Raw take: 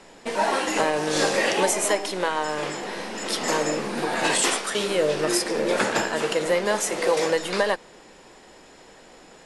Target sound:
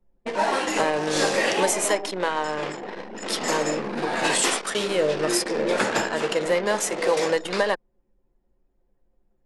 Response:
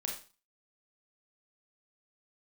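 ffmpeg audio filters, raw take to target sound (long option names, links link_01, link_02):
-af "anlmdn=39.8"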